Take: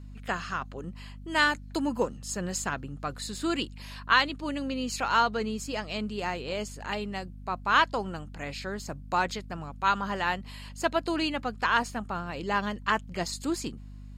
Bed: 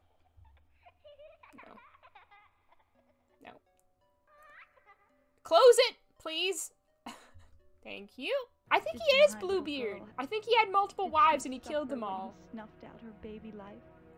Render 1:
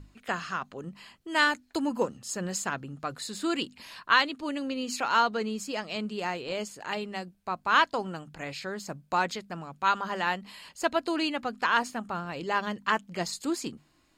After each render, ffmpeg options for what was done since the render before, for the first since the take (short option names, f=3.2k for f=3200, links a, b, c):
-af "bandreject=f=50:t=h:w=6,bandreject=f=100:t=h:w=6,bandreject=f=150:t=h:w=6,bandreject=f=200:t=h:w=6,bandreject=f=250:t=h:w=6"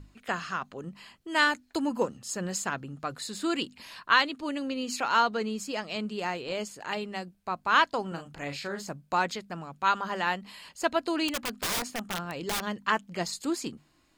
-filter_complex "[0:a]asettb=1/sr,asplit=3[a][b][c];[a]atrim=end=8.084[d];[b]atrim=start=8.08:end=8.89,asetpts=PTS-STARTPTS,afade=t=in:d=0.004:c=qsin,afade=t=out:st=0.806:d=0.004:c=qsin,asplit=2[e][f];[f]adelay=35,volume=-6dB[g];[e][g]amix=inputs=2:normalize=0,atrim=end_sample=35721[h];[c]atrim=start=8.886[i];[d][h]acrossfade=d=0.004:c1=hsin:c2=qsin[j];[j][i]acrossfade=d=0.004:c1=qsin:c2=hsin,asettb=1/sr,asplit=3[k][l][m];[k]atrim=end=11.284[n];[l]atrim=start=11.28:end=12.67,asetpts=PTS-STARTPTS,afade=t=in:d=0.004:c=qsin,afade=t=out:st=1.386:d=0.004:c=qsin,aeval=exprs='(mod(16.8*val(0)+1,2)-1)/16.8':c=same[o];[m]atrim=start=12.666[p];[n][o]acrossfade=d=0.004:c1=hsin:c2=qsin[q];[q][p]acrossfade=d=0.004:c1=qsin:c2=hsin"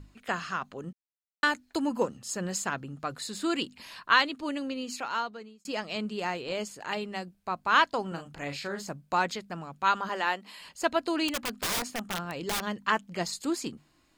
-filter_complex "[0:a]asettb=1/sr,asplit=3[a][b][c];[a]atrim=end=10.094[d];[b]atrim=start=10.09:end=10.6,asetpts=PTS-STARTPTS,afade=t=in:d=0.004:c=qsin,afade=t=out:st=0.506:d=0.004:c=qsin,highpass=f=240:w=0.5412,highpass=f=240:w=1.3066[e];[c]atrim=start=10.596[f];[d][e]acrossfade=d=0.004:c1=hsin:c2=qsin[g];[g][f]acrossfade=d=0.004:c1=qsin:c2=hsin,asplit=4[h][i][j][k];[h]atrim=end=0.93,asetpts=PTS-STARTPTS,afade=t=out:st=0.926:d=0.004:c=hsin[l];[i]atrim=start=0.93:end=1.43,asetpts=PTS-STARTPTS,volume=0[m];[j]atrim=start=1.43:end=5.65,asetpts=PTS-STARTPTS,afade=t=in:d=0.004:c=hsin,afade=t=out:st=3.08:d=1.14[n];[k]atrim=start=5.65,asetpts=PTS-STARTPTS,afade=t=in:d=0.004:c=hsin[o];[l][m][n][o]concat=n=4:v=0:a=1"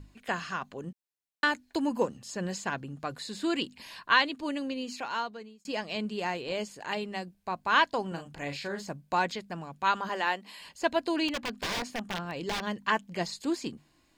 -filter_complex "[0:a]bandreject=f=1.3k:w=6.9,acrossover=split=5600[a][b];[b]acompressor=threshold=-50dB:ratio=4:attack=1:release=60[c];[a][c]amix=inputs=2:normalize=0"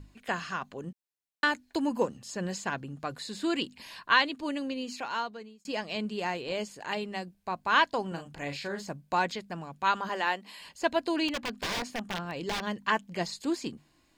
-af anull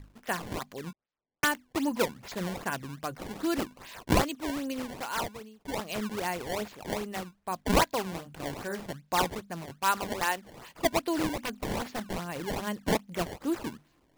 -af "acrusher=samples=20:mix=1:aa=0.000001:lfo=1:lforange=32:lforate=2.5"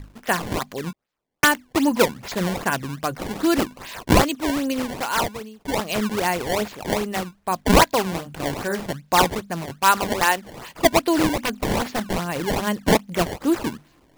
-af "volume=10dB,alimiter=limit=-3dB:level=0:latency=1"